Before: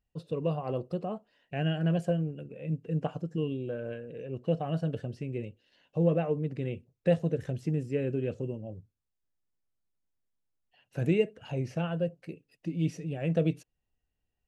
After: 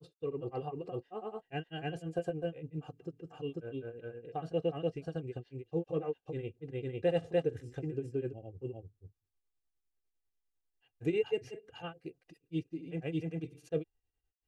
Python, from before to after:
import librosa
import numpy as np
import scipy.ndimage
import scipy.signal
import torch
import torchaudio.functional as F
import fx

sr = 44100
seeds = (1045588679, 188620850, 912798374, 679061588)

y = x + 0.69 * np.pad(x, (int(2.5 * sr / 1000.0), 0))[:len(x)]
y = fx.granulator(y, sr, seeds[0], grain_ms=145.0, per_s=10.0, spray_ms=353.0, spread_st=0)
y = y * librosa.db_to_amplitude(-4.0)